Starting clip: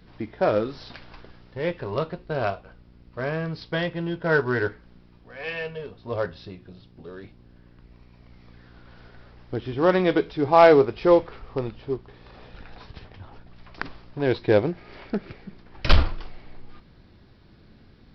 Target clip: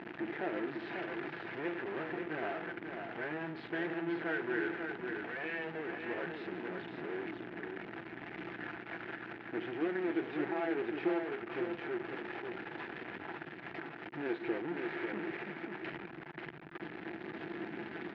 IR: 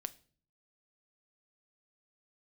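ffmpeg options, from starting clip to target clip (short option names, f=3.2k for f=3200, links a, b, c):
-filter_complex "[0:a]aeval=exprs='val(0)+0.5*0.0631*sgn(val(0))':c=same,aecho=1:1:5.9:0.3,alimiter=limit=-12.5dB:level=0:latency=1:release=218,acrusher=bits=4:dc=4:mix=0:aa=0.000001,volume=24dB,asoftclip=hard,volume=-24dB,tremolo=f=150:d=0.571,highpass=300,equalizer=f=340:t=q:w=4:g=8,equalizer=f=540:t=q:w=4:g=-9,equalizer=f=1.1k:t=q:w=4:g=-8,equalizer=f=1.7k:t=q:w=4:g=4,lowpass=f=2.4k:w=0.5412,lowpass=f=2.4k:w=1.3066,asplit=2[a][b];[b]aecho=0:1:543:0.531[c];[a][c]amix=inputs=2:normalize=0,volume=-3dB"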